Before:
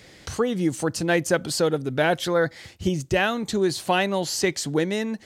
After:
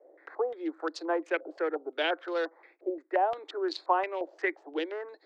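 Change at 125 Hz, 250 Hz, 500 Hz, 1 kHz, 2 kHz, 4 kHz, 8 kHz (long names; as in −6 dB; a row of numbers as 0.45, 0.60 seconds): below −40 dB, −12.0 dB, −7.5 dB, −3.0 dB, −8.5 dB, −11.0 dB, below −25 dB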